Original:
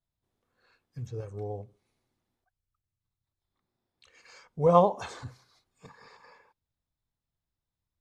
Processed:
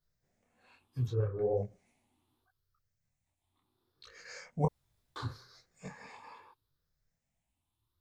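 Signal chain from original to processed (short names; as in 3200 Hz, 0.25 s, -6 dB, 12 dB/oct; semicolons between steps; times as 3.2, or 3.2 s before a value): moving spectral ripple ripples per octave 0.58, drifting +0.73 Hz, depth 11 dB; 1.12–1.57 LPF 2400 Hz 24 dB/oct; 4.65–5.16 room tone; detuned doubles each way 42 cents; gain +6.5 dB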